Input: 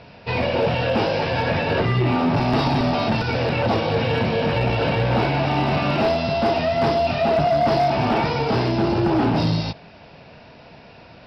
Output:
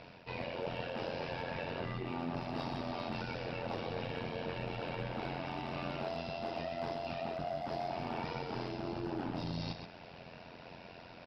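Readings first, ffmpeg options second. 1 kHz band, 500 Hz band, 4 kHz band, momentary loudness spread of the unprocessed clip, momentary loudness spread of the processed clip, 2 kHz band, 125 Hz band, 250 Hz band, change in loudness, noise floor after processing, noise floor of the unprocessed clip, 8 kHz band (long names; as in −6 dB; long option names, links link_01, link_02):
−18.5 dB, −19.0 dB, −18.0 dB, 3 LU, 9 LU, −18.0 dB, −21.0 dB, −19.0 dB, −19.0 dB, −53 dBFS, −45 dBFS, can't be measured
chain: -af "lowshelf=frequency=78:gain=-8.5,areverse,acompressor=threshold=-33dB:ratio=4,areverse,tremolo=f=87:d=0.75,aecho=1:1:127:0.398,volume=-3.5dB"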